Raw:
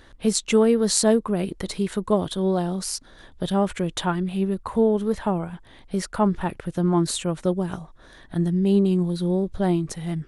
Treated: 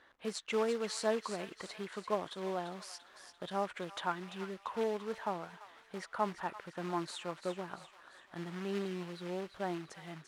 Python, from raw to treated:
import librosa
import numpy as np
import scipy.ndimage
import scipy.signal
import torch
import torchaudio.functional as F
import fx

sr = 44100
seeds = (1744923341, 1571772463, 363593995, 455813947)

y = fx.quant_float(x, sr, bits=2)
y = fx.bandpass_q(y, sr, hz=1300.0, q=0.72)
y = fx.echo_wet_highpass(y, sr, ms=342, feedback_pct=50, hz=1400.0, wet_db=-9)
y = y * 10.0 ** (-7.5 / 20.0)